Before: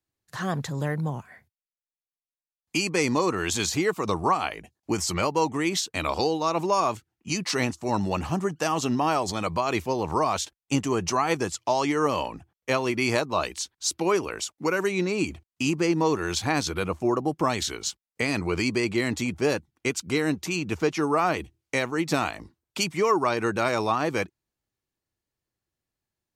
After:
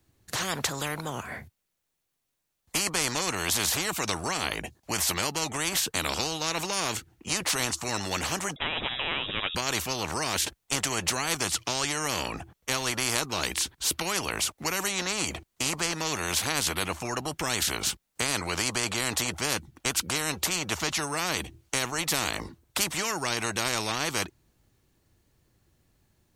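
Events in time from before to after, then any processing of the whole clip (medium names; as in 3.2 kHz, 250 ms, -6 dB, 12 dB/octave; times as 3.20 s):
8.56–9.55 s: frequency inversion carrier 3.6 kHz
whole clip: bass shelf 330 Hz +8.5 dB; band-stop 5 kHz, Q 25; spectrum-flattening compressor 4:1; trim -2 dB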